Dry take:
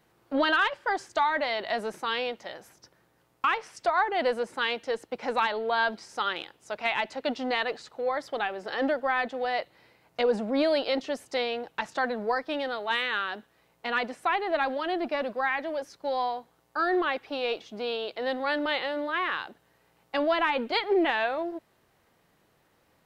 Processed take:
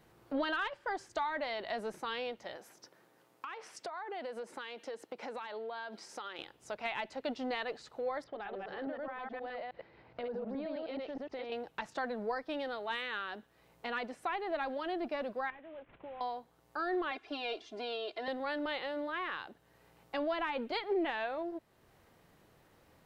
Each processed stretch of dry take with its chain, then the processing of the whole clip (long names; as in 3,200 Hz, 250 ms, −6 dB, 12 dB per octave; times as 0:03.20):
0:02.56–0:06.39: high-pass filter 240 Hz + downward compressor 5 to 1, threshold −34 dBFS
0:08.24–0:11.52: delay that plays each chunk backwards 105 ms, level −0.5 dB + downward compressor 2.5 to 1, threshold −35 dBFS + high-frequency loss of the air 280 metres
0:15.50–0:16.21: variable-slope delta modulation 16 kbit/s + downward compressor 2 to 1, threshold −53 dBFS
0:17.11–0:18.28: low-pass filter 8,400 Hz + low-shelf EQ 190 Hz −10.5 dB + comb filter 2.9 ms, depth 85%
whole clip: parametric band 190 Hz −3 dB 2 octaves; downward compressor 1.5 to 1, threshold −54 dBFS; low-shelf EQ 470 Hz +7 dB